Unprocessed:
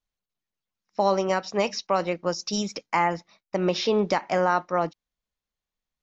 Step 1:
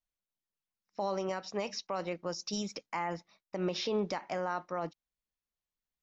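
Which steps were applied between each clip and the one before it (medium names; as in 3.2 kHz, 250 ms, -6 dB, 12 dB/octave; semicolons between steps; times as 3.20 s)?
peak limiter -16.5 dBFS, peak gain reduction 6 dB; trim -7.5 dB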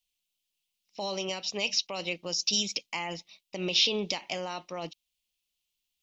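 resonant high shelf 2.1 kHz +10.5 dB, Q 3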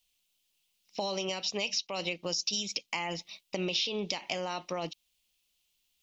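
compression 4:1, threshold -38 dBFS, peak gain reduction 15 dB; trim +7 dB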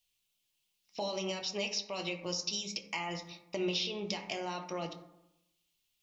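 reverberation RT60 0.90 s, pre-delay 4 ms, DRR 3 dB; trim -4.5 dB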